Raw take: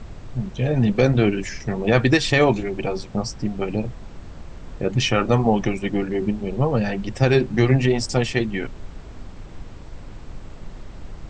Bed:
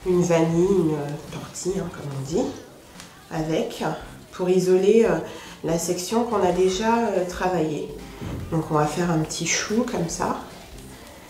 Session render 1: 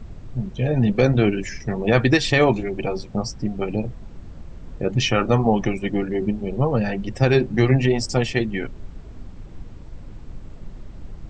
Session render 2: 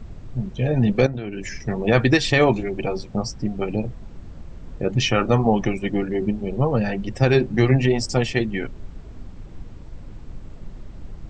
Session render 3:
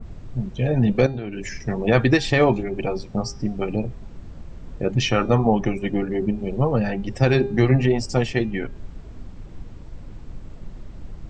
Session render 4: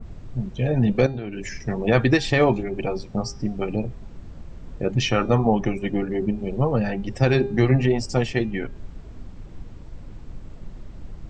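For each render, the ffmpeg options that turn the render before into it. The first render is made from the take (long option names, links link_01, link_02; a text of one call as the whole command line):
ffmpeg -i in.wav -af "afftdn=noise_reduction=7:noise_floor=-39" out.wav
ffmpeg -i in.wav -filter_complex "[0:a]asettb=1/sr,asplit=3[link_01][link_02][link_03];[link_01]atrim=end=1.064[link_04];[link_02]atrim=start=1.06:end=1.53,asetpts=PTS-STARTPTS,afade=type=in:duration=0.004:curve=qsin,afade=type=out:start_time=0.466:duration=0.004:curve=qsin,acompressor=threshold=-25dB:ratio=10:attack=3.2:release=140:knee=1:detection=peak[link_05];[link_03]atrim=start=1.526[link_06];[link_04][link_05]acrossfade=duration=0.004:curve1=hsin:curve2=qsin[link_07];[link_07][link_06]acrossfade=duration=0.004:curve1=qsin:curve2=hsin" out.wav
ffmpeg -i in.wav -af "bandreject=frequency=403.1:width_type=h:width=4,bandreject=frequency=806.2:width_type=h:width=4,bandreject=frequency=1209.3:width_type=h:width=4,bandreject=frequency=1612.4:width_type=h:width=4,bandreject=frequency=2015.5:width_type=h:width=4,bandreject=frequency=2418.6:width_type=h:width=4,bandreject=frequency=2821.7:width_type=h:width=4,bandreject=frequency=3224.8:width_type=h:width=4,bandreject=frequency=3627.9:width_type=h:width=4,bandreject=frequency=4031:width_type=h:width=4,bandreject=frequency=4434.1:width_type=h:width=4,bandreject=frequency=4837.2:width_type=h:width=4,bandreject=frequency=5240.3:width_type=h:width=4,bandreject=frequency=5643.4:width_type=h:width=4,bandreject=frequency=6046.5:width_type=h:width=4,bandreject=frequency=6449.6:width_type=h:width=4,bandreject=frequency=6852.7:width_type=h:width=4,bandreject=frequency=7255.8:width_type=h:width=4,adynamicequalizer=threshold=0.0158:dfrequency=1900:dqfactor=0.7:tfrequency=1900:tqfactor=0.7:attack=5:release=100:ratio=0.375:range=3:mode=cutabove:tftype=highshelf" out.wav
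ffmpeg -i in.wav -af "volume=-1dB" out.wav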